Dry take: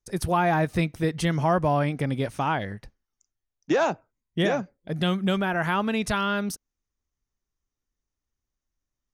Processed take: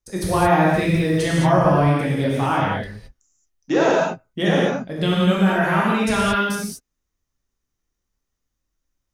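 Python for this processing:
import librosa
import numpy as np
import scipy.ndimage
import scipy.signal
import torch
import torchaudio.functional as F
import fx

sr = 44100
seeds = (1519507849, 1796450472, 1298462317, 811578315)

y = fx.notch(x, sr, hz=3300.0, q=9.5, at=(5.23, 6.01))
y = fx.rev_gated(y, sr, seeds[0], gate_ms=250, shape='flat', drr_db=-5.5)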